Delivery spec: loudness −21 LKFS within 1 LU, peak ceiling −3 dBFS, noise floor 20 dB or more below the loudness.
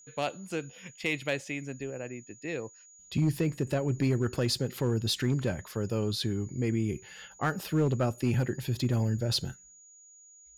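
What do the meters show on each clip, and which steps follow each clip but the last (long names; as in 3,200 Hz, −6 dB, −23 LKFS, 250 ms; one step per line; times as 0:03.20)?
share of clipped samples 0.7%; peaks flattened at −20.0 dBFS; interfering tone 6,800 Hz; level of the tone −53 dBFS; integrated loudness −31.0 LKFS; sample peak −20.0 dBFS; target loudness −21.0 LKFS
→ clipped peaks rebuilt −20 dBFS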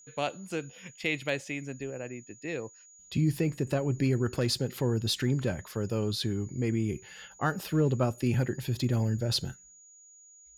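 share of clipped samples 0.0%; interfering tone 6,800 Hz; level of the tone −53 dBFS
→ notch filter 6,800 Hz, Q 30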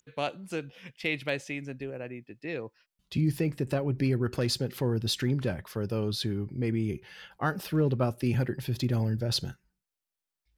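interfering tone none found; integrated loudness −30.5 LKFS; sample peak −14.0 dBFS; target loudness −21.0 LKFS
→ level +9.5 dB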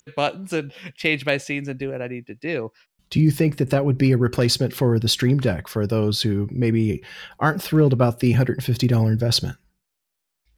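integrated loudness −21.0 LKFS; sample peak −4.5 dBFS; background noise floor −79 dBFS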